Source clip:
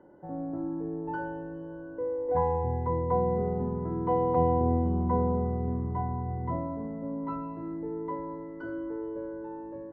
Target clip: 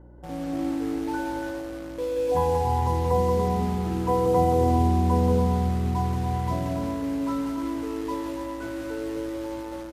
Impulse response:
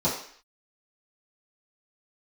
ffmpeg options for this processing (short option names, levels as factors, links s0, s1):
-filter_complex "[0:a]equalizer=f=84:t=o:w=0.29:g=2,asplit=2[s0][s1];[s1]acrusher=bits=5:mix=0:aa=0.000001,volume=0.398[s2];[s0][s2]amix=inputs=2:normalize=0,aeval=exprs='val(0)+0.00447*(sin(2*PI*60*n/s)+sin(2*PI*2*60*n/s)/2+sin(2*PI*3*60*n/s)/3+sin(2*PI*4*60*n/s)/4+sin(2*PI*5*60*n/s)/5)':c=same,aecho=1:1:180|288|352.8|391.7|415:0.631|0.398|0.251|0.158|0.1,asplit=2[s3][s4];[1:a]atrim=start_sample=2205,adelay=114[s5];[s4][s5]afir=irnorm=-1:irlink=0,volume=0.0282[s6];[s3][s6]amix=inputs=2:normalize=0" -ar 32000 -c:a libmp3lame -b:a 56k